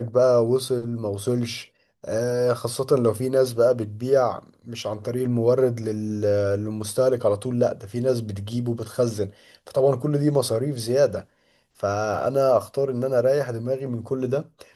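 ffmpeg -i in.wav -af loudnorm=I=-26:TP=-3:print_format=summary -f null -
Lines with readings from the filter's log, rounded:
Input Integrated:    -23.5 LUFS
Input True Peak:      -7.4 dBTP
Input LRA:             1.2 LU
Input Threshold:     -33.7 LUFS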